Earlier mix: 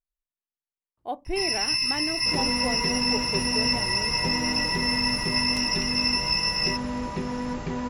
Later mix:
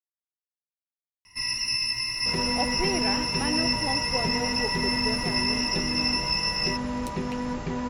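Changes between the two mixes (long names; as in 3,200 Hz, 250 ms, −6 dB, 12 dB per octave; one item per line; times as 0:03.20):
speech: entry +1.50 s
first sound: send off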